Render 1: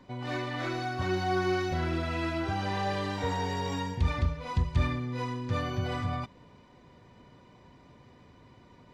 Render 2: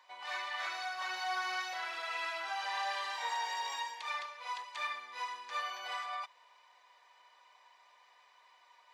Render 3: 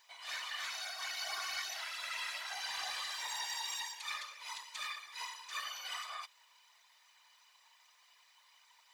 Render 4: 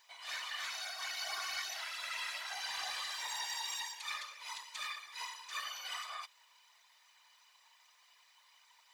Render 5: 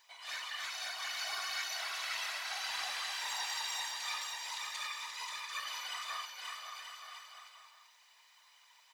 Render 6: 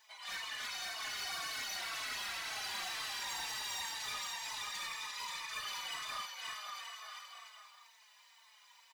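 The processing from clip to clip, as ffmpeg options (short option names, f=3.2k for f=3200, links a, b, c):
-af "highpass=f=840:w=0.5412,highpass=f=840:w=1.3066,bandreject=f=1.4k:w=11"
-af "aderivative,aeval=exprs='0.02*(cos(1*acos(clip(val(0)/0.02,-1,1)))-cos(1*PI/2))+0.00126*(cos(5*acos(clip(val(0)/0.02,-1,1)))-cos(5*PI/2))':c=same,afftfilt=real='hypot(re,im)*cos(2*PI*random(0))':imag='hypot(re,im)*sin(2*PI*random(1))':win_size=512:overlap=0.75,volume=12.5dB"
-af anull
-af "aecho=1:1:530|927.5|1226|1449|1617:0.631|0.398|0.251|0.158|0.1"
-filter_complex "[0:a]asoftclip=type=hard:threshold=-39dB,asplit=2[a][b];[b]adelay=4.1,afreqshift=-2[c];[a][c]amix=inputs=2:normalize=1,volume=4dB"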